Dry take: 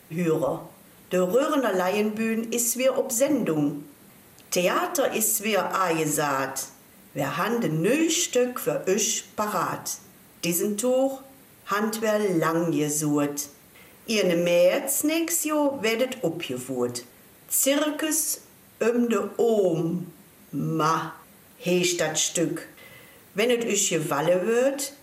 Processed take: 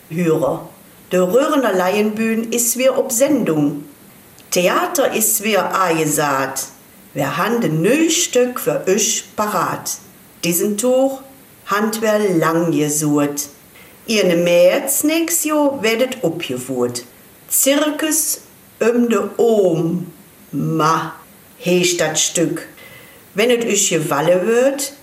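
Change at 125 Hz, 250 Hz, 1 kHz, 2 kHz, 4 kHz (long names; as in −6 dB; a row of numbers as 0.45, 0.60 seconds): +8.0, +8.0, +8.0, +8.0, +8.0 decibels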